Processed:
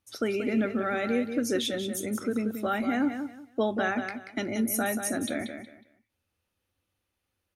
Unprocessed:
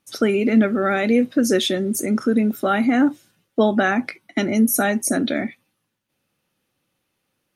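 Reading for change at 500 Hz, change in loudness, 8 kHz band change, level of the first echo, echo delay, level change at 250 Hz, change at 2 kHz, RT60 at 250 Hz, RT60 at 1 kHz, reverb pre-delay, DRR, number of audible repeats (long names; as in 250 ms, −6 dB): −9.0 dB, −9.5 dB, −8.5 dB, −8.0 dB, 183 ms, −10.5 dB, −8.5 dB, no reverb audible, no reverb audible, no reverb audible, no reverb audible, 3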